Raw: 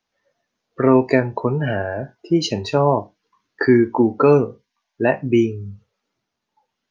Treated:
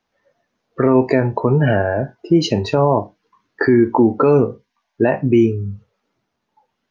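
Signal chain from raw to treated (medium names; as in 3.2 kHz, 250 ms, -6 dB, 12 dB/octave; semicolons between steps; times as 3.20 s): treble shelf 2.7 kHz -9 dB; peak limiter -11.5 dBFS, peak gain reduction 8 dB; trim +7 dB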